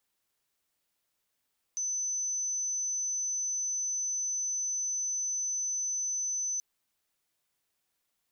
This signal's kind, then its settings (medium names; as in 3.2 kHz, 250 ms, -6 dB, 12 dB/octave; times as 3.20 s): tone sine 6.06 kHz -29.5 dBFS 4.83 s